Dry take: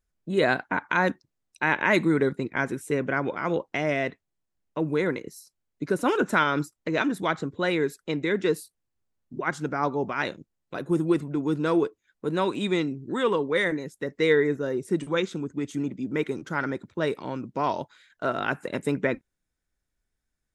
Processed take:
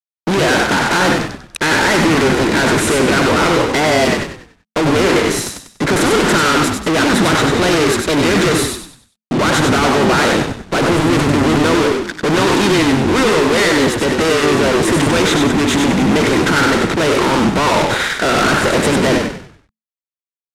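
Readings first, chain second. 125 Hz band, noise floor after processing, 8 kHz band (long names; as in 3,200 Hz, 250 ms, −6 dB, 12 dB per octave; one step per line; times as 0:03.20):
+14.5 dB, below −85 dBFS, +25.5 dB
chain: compressor on every frequency bin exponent 0.6
fuzz pedal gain 42 dB, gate −45 dBFS
low-pass filter 9,600 Hz 12 dB per octave
echo with shifted repeats 96 ms, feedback 36%, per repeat −44 Hz, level −4 dB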